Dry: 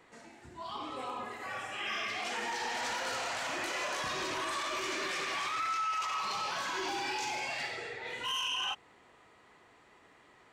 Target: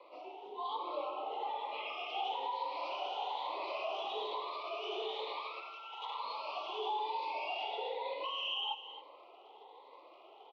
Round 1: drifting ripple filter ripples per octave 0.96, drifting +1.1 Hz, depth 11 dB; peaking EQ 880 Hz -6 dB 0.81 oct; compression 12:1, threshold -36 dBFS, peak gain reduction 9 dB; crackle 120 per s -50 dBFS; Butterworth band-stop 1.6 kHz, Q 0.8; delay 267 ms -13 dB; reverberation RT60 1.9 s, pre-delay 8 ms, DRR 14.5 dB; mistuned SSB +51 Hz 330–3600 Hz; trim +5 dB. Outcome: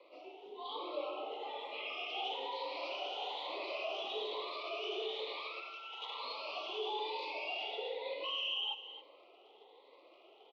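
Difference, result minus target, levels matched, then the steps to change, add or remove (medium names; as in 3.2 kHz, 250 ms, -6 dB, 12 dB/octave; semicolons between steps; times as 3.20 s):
1 kHz band -5.0 dB
change: peaking EQ 880 Hz +5.5 dB 0.81 oct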